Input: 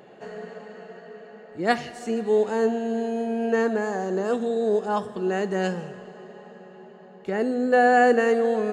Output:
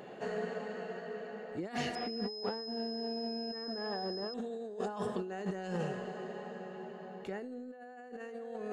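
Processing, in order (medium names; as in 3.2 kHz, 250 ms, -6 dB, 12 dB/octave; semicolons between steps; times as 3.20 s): feedback comb 250 Hz, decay 0.27 s, harmonics all, mix 50%; compressor with a negative ratio -38 dBFS, ratio -1; 1.95–4.34 s: class-D stage that switches slowly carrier 5.1 kHz; trim -2.5 dB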